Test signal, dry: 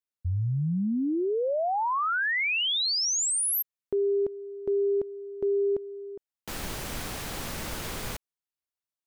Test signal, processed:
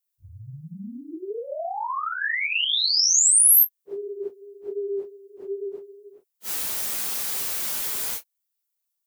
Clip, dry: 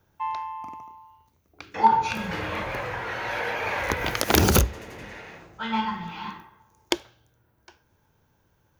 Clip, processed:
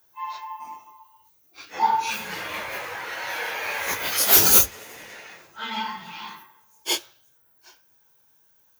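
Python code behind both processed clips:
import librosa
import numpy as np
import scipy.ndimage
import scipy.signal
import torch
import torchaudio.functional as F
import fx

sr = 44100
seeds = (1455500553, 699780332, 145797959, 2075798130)

y = fx.phase_scramble(x, sr, seeds[0], window_ms=100)
y = fx.riaa(y, sr, side='recording')
y = y * librosa.db_to_amplitude(-2.0)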